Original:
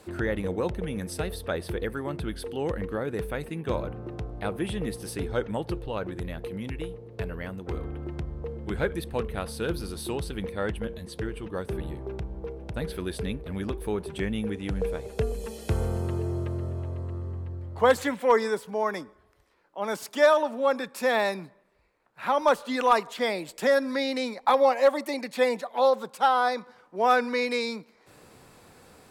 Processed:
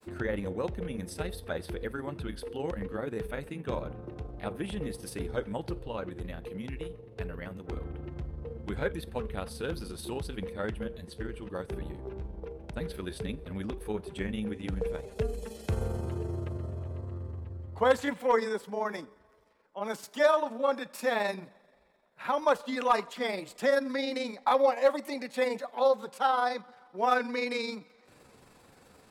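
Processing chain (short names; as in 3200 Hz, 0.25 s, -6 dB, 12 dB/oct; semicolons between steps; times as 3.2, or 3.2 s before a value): two-slope reverb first 0.28 s, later 2.5 s, from -18 dB, DRR 17 dB; grains 80 ms, grains 23/s, spray 12 ms, pitch spread up and down by 0 st; gain -3 dB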